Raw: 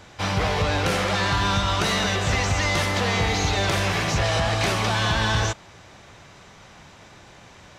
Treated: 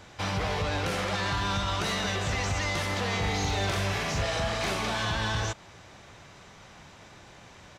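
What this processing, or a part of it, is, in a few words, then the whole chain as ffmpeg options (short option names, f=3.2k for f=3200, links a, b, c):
clipper into limiter: -filter_complex "[0:a]asplit=3[a][b][c];[a]afade=t=out:st=3.22:d=0.02[d];[b]asplit=2[e][f];[f]adelay=41,volume=-4dB[g];[e][g]amix=inputs=2:normalize=0,afade=t=in:st=3.22:d=0.02,afade=t=out:st=5.03:d=0.02[h];[c]afade=t=in:st=5.03:d=0.02[i];[d][h][i]amix=inputs=3:normalize=0,asoftclip=type=hard:threshold=-13.5dB,alimiter=limit=-18.5dB:level=0:latency=1:release=117,volume=-3dB"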